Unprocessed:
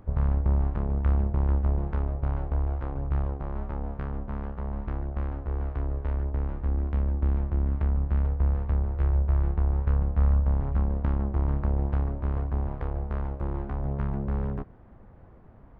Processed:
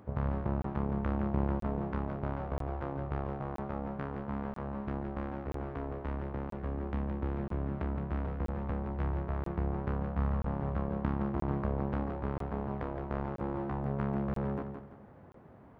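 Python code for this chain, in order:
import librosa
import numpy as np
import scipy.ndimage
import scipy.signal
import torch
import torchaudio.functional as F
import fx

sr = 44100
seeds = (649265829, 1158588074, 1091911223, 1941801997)

y = scipy.signal.sosfilt(scipy.signal.butter(2, 130.0, 'highpass', fs=sr, output='sos'), x)
y = fx.echo_feedback(y, sr, ms=168, feedback_pct=33, wet_db=-7.0)
y = fx.buffer_crackle(y, sr, first_s=0.62, period_s=0.98, block=1024, kind='zero')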